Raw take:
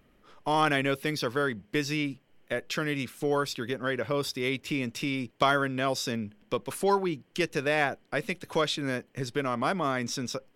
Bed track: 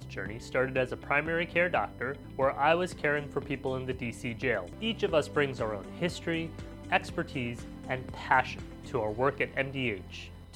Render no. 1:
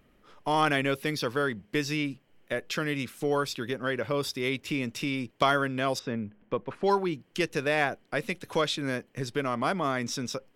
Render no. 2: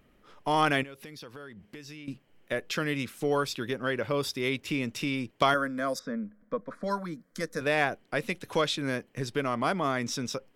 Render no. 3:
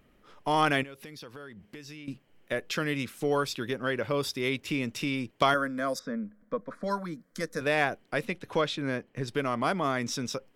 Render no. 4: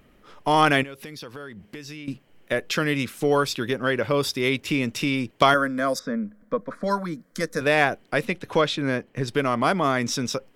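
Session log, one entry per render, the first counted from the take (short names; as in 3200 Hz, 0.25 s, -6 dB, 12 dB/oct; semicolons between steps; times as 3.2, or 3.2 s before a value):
5.99–6.84 LPF 1900 Hz
0.83–2.08 compressor 5:1, threshold -43 dBFS; 5.54–7.61 fixed phaser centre 560 Hz, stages 8
8.25–9.28 high shelf 5200 Hz -11.5 dB
gain +6.5 dB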